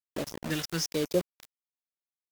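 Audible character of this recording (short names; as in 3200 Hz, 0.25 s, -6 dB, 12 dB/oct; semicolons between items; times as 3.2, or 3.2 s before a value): phasing stages 2, 1.1 Hz, lowest notch 530–2100 Hz; a quantiser's noise floor 6-bit, dither none; Vorbis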